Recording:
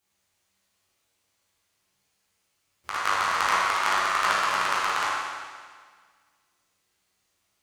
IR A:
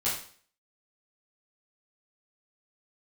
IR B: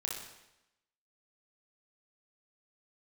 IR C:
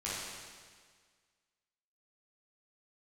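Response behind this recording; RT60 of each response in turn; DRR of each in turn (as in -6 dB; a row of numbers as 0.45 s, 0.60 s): C; 0.45 s, 0.90 s, 1.7 s; -9.5 dB, -2.0 dB, -9.5 dB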